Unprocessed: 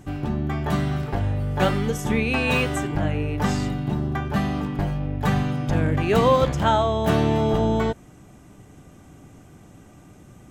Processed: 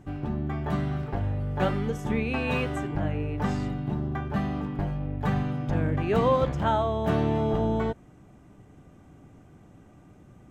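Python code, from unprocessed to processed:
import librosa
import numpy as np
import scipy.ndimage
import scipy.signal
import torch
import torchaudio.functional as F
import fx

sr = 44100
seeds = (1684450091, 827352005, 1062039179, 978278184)

y = fx.high_shelf(x, sr, hz=3500.0, db=-11.5)
y = y * 10.0 ** (-4.5 / 20.0)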